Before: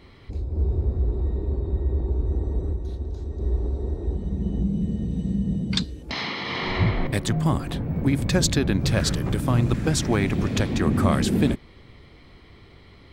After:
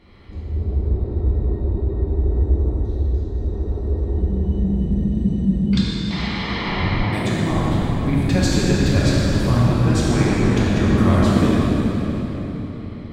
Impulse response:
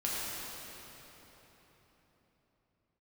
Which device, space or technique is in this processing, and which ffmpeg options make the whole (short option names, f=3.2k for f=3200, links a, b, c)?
swimming-pool hall: -filter_complex "[1:a]atrim=start_sample=2205[a];[0:a][a]afir=irnorm=-1:irlink=0,highshelf=f=5.6k:g=-7,asettb=1/sr,asplit=3[b][c][d];[b]atrim=end=7.044[e];[c]atrim=start=7.04:end=7.51,asetpts=PTS-STARTPTS,afade=t=in:d=0.004:c=qsin,afade=t=out:st=0.466:d=0.004:c=qsin,highpass=100[f];[d]atrim=start=7.506[g];[e][f]acrossfade=d=0.004:c1=hsin:c2=qsin[h];[h][g]acrossfade=d=0.004:c1=qsin:c2=hsin,volume=-2dB"